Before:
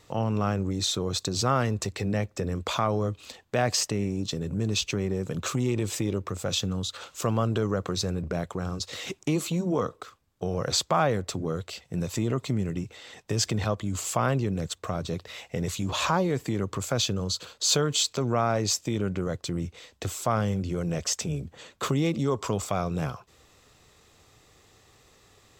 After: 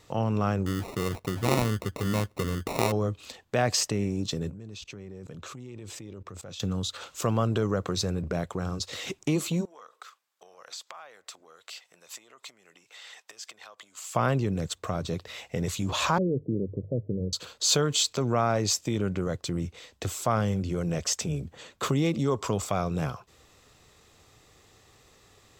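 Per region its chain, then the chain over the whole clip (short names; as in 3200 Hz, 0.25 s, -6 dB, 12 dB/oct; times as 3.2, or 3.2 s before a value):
0.66–2.92 LPF 2700 Hz 24 dB/oct + sample-rate reducer 1600 Hz
4.5–6.6 high shelf 11000 Hz -10.5 dB + level quantiser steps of 21 dB
9.65–14.15 compressor 10:1, threshold -36 dBFS + HPF 930 Hz
16.18–17.33 steep low-pass 540 Hz 48 dB/oct + notches 50/100/150 Hz
whole clip: dry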